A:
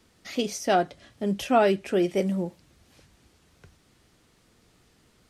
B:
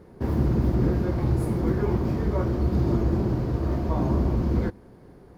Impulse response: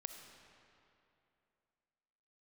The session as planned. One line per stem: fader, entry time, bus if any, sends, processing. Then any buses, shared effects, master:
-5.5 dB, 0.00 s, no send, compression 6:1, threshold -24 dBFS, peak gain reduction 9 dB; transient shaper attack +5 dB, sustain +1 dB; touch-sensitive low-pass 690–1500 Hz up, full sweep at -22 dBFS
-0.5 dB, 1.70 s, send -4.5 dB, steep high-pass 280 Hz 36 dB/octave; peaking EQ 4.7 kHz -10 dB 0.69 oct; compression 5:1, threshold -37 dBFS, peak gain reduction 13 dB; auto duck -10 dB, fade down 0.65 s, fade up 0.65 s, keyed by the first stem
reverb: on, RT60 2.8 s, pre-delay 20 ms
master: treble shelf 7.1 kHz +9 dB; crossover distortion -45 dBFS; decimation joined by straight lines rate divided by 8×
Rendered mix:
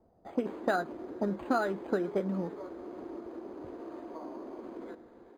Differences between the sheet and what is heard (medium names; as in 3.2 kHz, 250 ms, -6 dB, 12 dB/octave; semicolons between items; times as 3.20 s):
stem B: entry 1.70 s -> 0.25 s; master: missing crossover distortion -45 dBFS